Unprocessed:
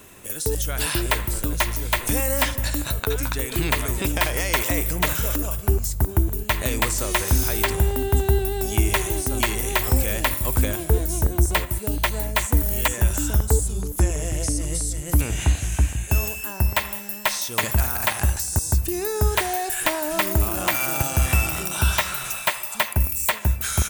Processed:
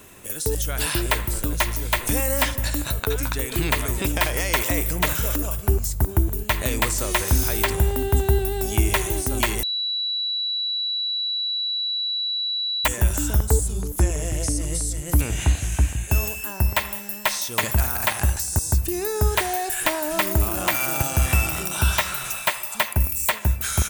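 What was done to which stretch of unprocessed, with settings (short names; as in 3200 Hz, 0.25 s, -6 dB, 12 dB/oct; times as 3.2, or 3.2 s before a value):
9.63–12.85 bleep 3930 Hz -22.5 dBFS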